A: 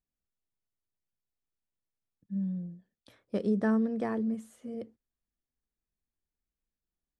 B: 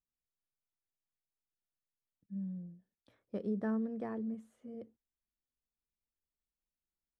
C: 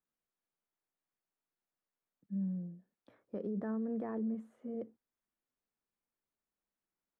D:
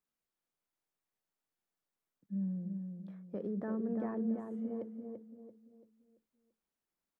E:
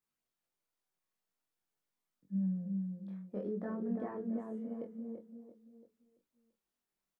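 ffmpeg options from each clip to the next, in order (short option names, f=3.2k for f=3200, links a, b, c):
-af "highshelf=f=2.9k:g=-10.5,volume=-7.5dB"
-filter_complex "[0:a]acrossover=split=150 2000:gain=0.2 1 0.224[a][b][c];[a][b][c]amix=inputs=3:normalize=0,alimiter=level_in=13dB:limit=-24dB:level=0:latency=1:release=43,volume=-13dB,volume=6.5dB"
-filter_complex "[0:a]asplit=2[a][b];[b]adelay=338,lowpass=f=1.4k:p=1,volume=-5dB,asplit=2[c][d];[d]adelay=338,lowpass=f=1.4k:p=1,volume=0.4,asplit=2[e][f];[f]adelay=338,lowpass=f=1.4k:p=1,volume=0.4,asplit=2[g][h];[h]adelay=338,lowpass=f=1.4k:p=1,volume=0.4,asplit=2[i][j];[j]adelay=338,lowpass=f=1.4k:p=1,volume=0.4[k];[a][c][e][g][i][k]amix=inputs=6:normalize=0"
-filter_complex "[0:a]flanger=delay=20:depth=6.5:speed=0.49,asplit=2[a][b];[b]adelay=21,volume=-6dB[c];[a][c]amix=inputs=2:normalize=0,volume=2dB"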